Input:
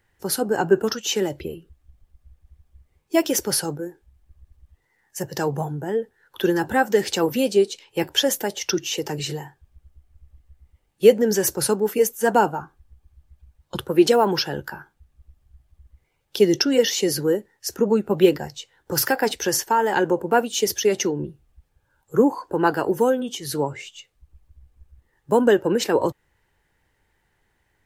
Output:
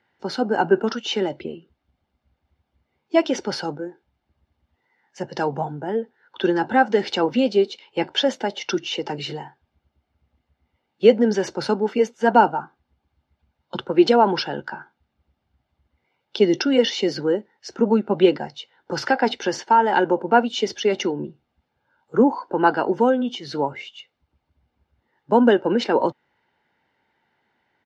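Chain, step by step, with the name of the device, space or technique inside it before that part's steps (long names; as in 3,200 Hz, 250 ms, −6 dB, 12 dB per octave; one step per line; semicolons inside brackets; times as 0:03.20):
kitchen radio (loudspeaker in its box 200–4,600 Hz, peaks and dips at 240 Hz +8 dB, 360 Hz +4 dB, 960 Hz +5 dB)
comb filter 1.4 ms, depth 35%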